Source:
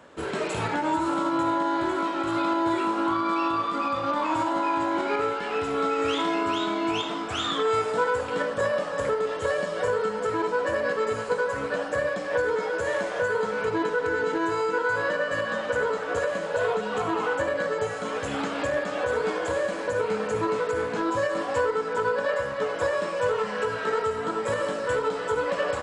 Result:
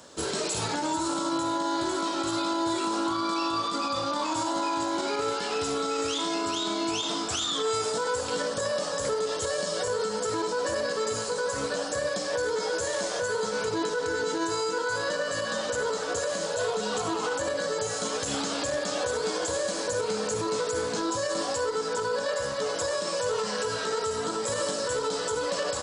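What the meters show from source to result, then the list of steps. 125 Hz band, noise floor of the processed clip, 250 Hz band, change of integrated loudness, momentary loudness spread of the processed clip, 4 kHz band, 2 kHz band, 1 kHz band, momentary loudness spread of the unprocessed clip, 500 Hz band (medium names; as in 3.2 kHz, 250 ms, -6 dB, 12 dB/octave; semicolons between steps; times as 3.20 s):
-2.5 dB, -32 dBFS, -2.5 dB, -2.0 dB, 1 LU, +5.0 dB, -4.5 dB, -3.5 dB, 3 LU, -3.0 dB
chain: resonant high shelf 3.4 kHz +13 dB, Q 1.5; peak limiter -20 dBFS, peak gain reduction 9.5 dB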